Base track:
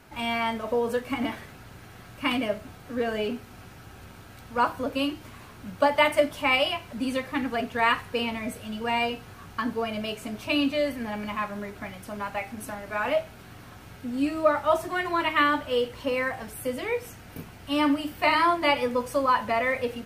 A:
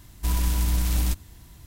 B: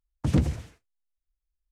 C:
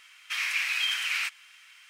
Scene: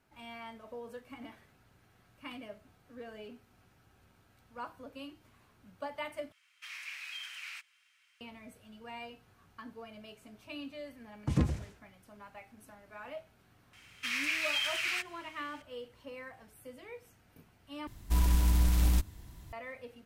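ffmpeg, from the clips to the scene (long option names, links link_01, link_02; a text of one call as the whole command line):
ffmpeg -i bed.wav -i cue0.wav -i cue1.wav -i cue2.wav -filter_complex "[3:a]asplit=2[link_01][link_02];[0:a]volume=-19dB[link_03];[1:a]highshelf=frequency=3000:gain=-5.5[link_04];[link_03]asplit=3[link_05][link_06][link_07];[link_05]atrim=end=6.324[link_08];[link_01]atrim=end=1.89,asetpts=PTS-STARTPTS,volume=-15.5dB[link_09];[link_06]atrim=start=8.206:end=17.874[link_10];[link_04]atrim=end=1.66,asetpts=PTS-STARTPTS,volume=-2.5dB[link_11];[link_07]atrim=start=19.526[link_12];[2:a]atrim=end=1.71,asetpts=PTS-STARTPTS,volume=-6dB,afade=type=in:duration=0.004:curve=hsin,afade=type=out:start_time=1.706:duration=0.004:curve=hsin,adelay=11030[link_13];[link_02]atrim=end=1.89,asetpts=PTS-STARTPTS,volume=-4.5dB,afade=type=in:duration=0.004:curve=hsin,afade=type=out:start_time=1.886:duration=0.004:curve=hsin,adelay=13730[link_14];[link_08][link_09]acrossfade=duration=0.004:curve1=hsin:curve2=hsin[link_15];[link_15][link_10]acrossfade=duration=0.004:curve1=hsin:curve2=hsin[link_16];[link_16][link_11]acrossfade=duration=0.004:curve1=hsin:curve2=hsin[link_17];[link_17][link_12]acrossfade=duration=0.004:curve1=hsin:curve2=hsin[link_18];[link_18][link_13][link_14]amix=inputs=3:normalize=0" out.wav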